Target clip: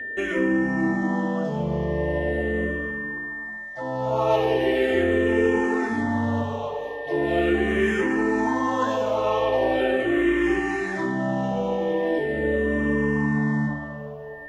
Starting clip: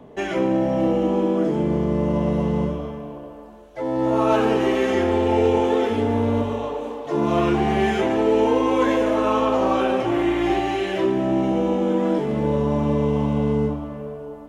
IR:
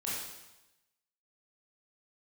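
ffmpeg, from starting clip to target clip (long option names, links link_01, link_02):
-filter_complex "[0:a]aeval=exprs='val(0)+0.0355*sin(2*PI*1800*n/s)':channel_layout=same,asplit=2[link_01][link_02];[link_02]afreqshift=-0.4[link_03];[link_01][link_03]amix=inputs=2:normalize=1"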